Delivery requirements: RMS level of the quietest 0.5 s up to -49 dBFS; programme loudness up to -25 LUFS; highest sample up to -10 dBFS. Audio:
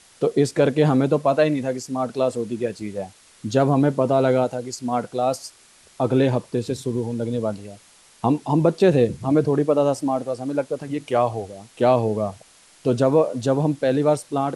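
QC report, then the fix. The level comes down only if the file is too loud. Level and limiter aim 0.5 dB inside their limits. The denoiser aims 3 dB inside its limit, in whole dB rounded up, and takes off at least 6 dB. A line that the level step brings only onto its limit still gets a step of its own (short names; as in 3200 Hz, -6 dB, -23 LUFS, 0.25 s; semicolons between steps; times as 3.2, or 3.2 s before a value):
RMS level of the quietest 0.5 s -52 dBFS: OK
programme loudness -21.5 LUFS: fail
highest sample -4.0 dBFS: fail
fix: gain -4 dB; limiter -10.5 dBFS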